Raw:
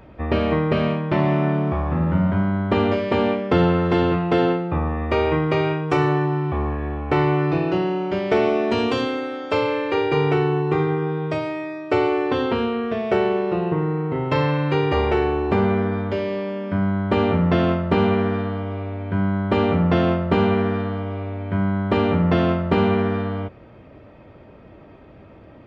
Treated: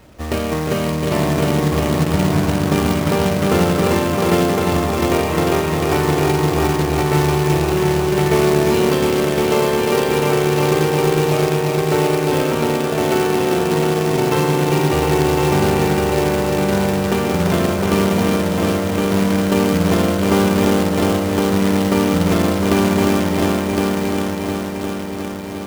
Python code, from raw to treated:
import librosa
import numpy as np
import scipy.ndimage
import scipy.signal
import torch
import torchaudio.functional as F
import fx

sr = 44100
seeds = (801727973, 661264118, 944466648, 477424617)

y = fx.echo_heads(x, sr, ms=354, heads='all three', feedback_pct=63, wet_db=-6.0)
y = fx.quant_companded(y, sr, bits=4)
y = y * librosa.db_to_amplitude(-1.0)